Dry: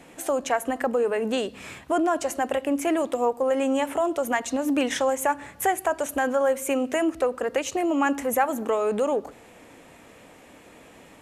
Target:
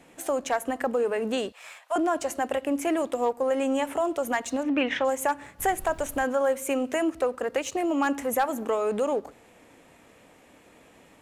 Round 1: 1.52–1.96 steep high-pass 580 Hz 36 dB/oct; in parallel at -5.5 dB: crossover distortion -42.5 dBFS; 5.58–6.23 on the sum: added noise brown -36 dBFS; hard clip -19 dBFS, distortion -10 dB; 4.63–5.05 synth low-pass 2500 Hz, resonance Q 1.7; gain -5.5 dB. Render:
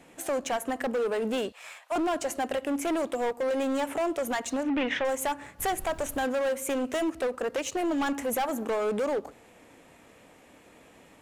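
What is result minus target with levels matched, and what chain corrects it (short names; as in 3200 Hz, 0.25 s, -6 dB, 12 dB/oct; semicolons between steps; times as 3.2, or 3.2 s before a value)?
hard clip: distortion +18 dB
1.52–1.96 steep high-pass 580 Hz 36 dB/oct; in parallel at -5.5 dB: crossover distortion -42.5 dBFS; 5.58–6.23 on the sum: added noise brown -36 dBFS; hard clip -10 dBFS, distortion -29 dB; 4.63–5.05 synth low-pass 2500 Hz, resonance Q 1.7; gain -5.5 dB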